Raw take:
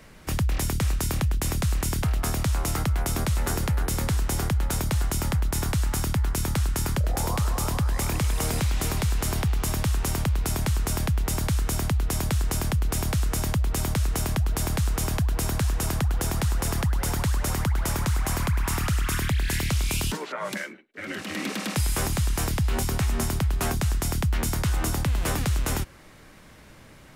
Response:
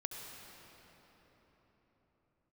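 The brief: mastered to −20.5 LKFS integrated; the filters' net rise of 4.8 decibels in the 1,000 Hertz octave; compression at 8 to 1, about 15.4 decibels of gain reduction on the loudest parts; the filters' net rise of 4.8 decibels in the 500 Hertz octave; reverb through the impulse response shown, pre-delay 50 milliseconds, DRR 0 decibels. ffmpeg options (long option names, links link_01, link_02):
-filter_complex "[0:a]equalizer=frequency=500:width_type=o:gain=5,equalizer=frequency=1000:width_type=o:gain=4.5,acompressor=threshold=-37dB:ratio=8,asplit=2[link_01][link_02];[1:a]atrim=start_sample=2205,adelay=50[link_03];[link_02][link_03]afir=irnorm=-1:irlink=0,volume=0.5dB[link_04];[link_01][link_04]amix=inputs=2:normalize=0,volume=16dB"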